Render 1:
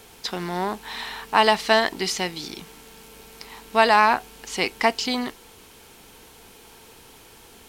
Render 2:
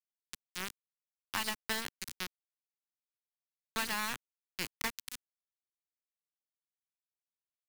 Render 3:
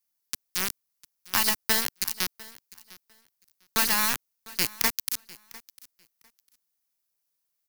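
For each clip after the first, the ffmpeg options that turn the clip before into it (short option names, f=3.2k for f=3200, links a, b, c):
-filter_complex "[0:a]aeval=exprs='val(0)*gte(abs(val(0)),0.168)':c=same,equalizer=f=640:t=o:w=1.3:g=-13.5,acrossover=split=260|1500|7500[a][b][c][d];[a]acompressor=threshold=-41dB:ratio=4[e];[b]acompressor=threshold=-33dB:ratio=4[f];[c]acompressor=threshold=-32dB:ratio=4[g];[d]acompressor=threshold=-34dB:ratio=4[h];[e][f][g][h]amix=inputs=4:normalize=0,volume=-5.5dB"
-af "aexciter=amount=2:drive=5.4:freq=4.6k,aecho=1:1:701|1402:0.0891|0.016,volume=8dB"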